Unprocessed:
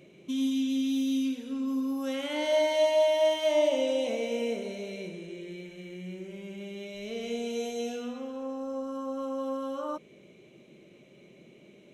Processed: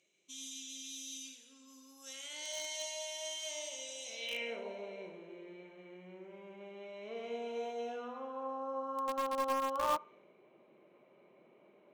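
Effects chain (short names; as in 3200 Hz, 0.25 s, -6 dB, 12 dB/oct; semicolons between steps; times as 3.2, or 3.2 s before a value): narrowing echo 69 ms, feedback 63%, band-pass 2900 Hz, level -15 dB; band-pass sweep 6900 Hz -> 1000 Hz, 4.05–4.64; in parallel at -8.5 dB: bit-crush 6-bit; on the sum: mismatched tape noise reduction decoder only; gain +6 dB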